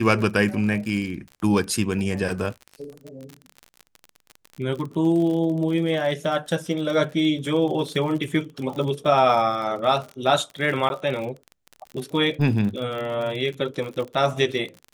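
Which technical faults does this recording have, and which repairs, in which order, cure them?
crackle 43/s -30 dBFS
10.89–10.9 gap 11 ms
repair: de-click; interpolate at 10.89, 11 ms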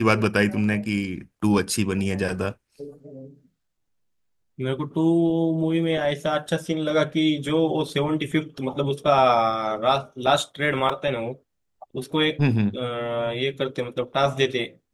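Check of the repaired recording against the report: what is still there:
none

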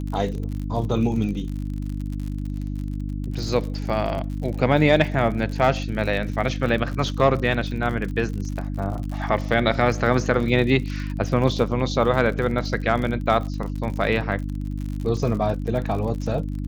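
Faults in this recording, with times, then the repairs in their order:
crackle 52/s -30 dBFS
hum 50 Hz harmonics 6 -28 dBFS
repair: de-click; de-hum 50 Hz, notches 6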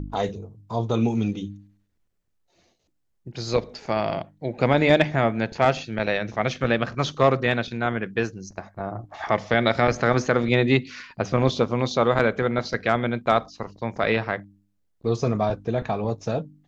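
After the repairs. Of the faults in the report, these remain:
none

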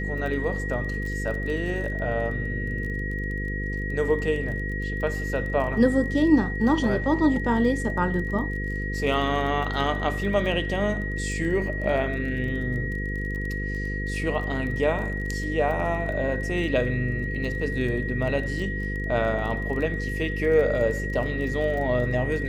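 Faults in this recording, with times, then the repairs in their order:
buzz 50 Hz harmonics 10 -30 dBFS
crackle 22/s -33 dBFS
tone 1900 Hz -32 dBFS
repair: de-click; notch 1900 Hz, Q 30; de-hum 50 Hz, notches 10

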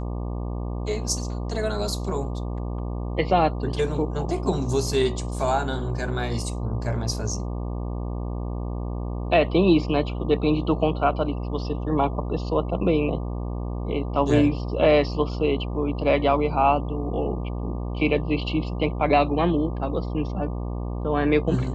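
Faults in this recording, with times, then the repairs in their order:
buzz 60 Hz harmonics 20 -29 dBFS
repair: de-hum 60 Hz, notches 20

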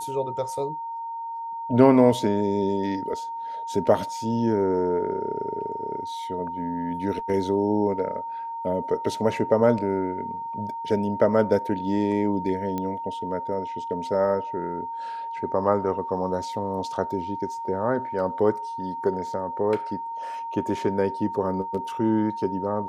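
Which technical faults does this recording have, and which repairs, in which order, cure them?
tone 920 Hz -30 dBFS
12.78 pop -16 dBFS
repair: de-click; notch 920 Hz, Q 30

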